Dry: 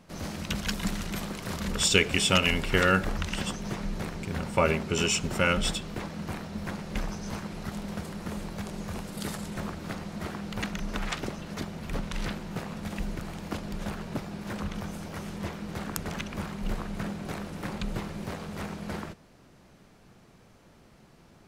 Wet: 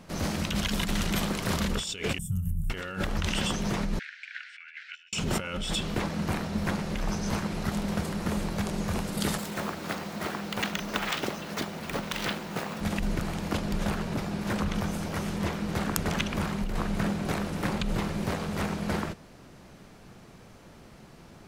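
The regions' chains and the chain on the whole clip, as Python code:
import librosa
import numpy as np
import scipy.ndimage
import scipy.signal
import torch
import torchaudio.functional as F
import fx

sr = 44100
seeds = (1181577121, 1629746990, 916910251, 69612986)

y = fx.chain(x, sr, fx.cheby2_bandstop(low_hz=290.0, high_hz=4800.0, order=4, stop_db=40),
    fx.peak_eq(hz=7400.0, db=-13.0, octaves=1.3), at=(2.18, 2.7))
y = fx.chain(y, sr, fx.steep_highpass(hz=1500.0, slope=96),
    fx.over_compress(threshold_db=-39.0, ratio=-0.5),
    fx.spacing_loss(db_at_10k=38), at=(3.99, 5.13))
y = fx.chain(y, sr, fx.highpass(hz=340.0, slope=6),
    fx.resample_bad(factor=2, down='none', up='hold'), at=(9.38, 12.81))
y = fx.dynamic_eq(y, sr, hz=3200.0, q=3.1, threshold_db=-47.0, ratio=4.0, max_db=4)
y = fx.over_compress(y, sr, threshold_db=-32.0, ratio=-1.0)
y = y * librosa.db_to_amplitude(4.0)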